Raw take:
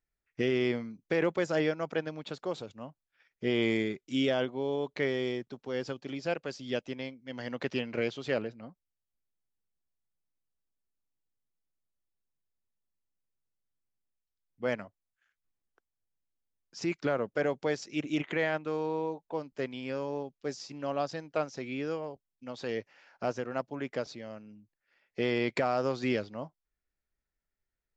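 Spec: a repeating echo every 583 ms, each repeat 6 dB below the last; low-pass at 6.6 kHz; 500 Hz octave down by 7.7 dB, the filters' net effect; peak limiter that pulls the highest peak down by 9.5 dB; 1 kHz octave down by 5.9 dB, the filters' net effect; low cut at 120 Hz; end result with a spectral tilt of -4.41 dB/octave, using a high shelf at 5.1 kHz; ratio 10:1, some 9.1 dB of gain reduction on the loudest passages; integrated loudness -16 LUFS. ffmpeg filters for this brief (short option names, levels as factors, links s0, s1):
-af "highpass=120,lowpass=6600,equalizer=f=500:t=o:g=-8.5,equalizer=f=1000:t=o:g=-4.5,highshelf=f=5100:g=-8,acompressor=threshold=0.0141:ratio=10,alimiter=level_in=3.16:limit=0.0631:level=0:latency=1,volume=0.316,aecho=1:1:583|1166|1749|2332|2915|3498:0.501|0.251|0.125|0.0626|0.0313|0.0157,volume=29.9"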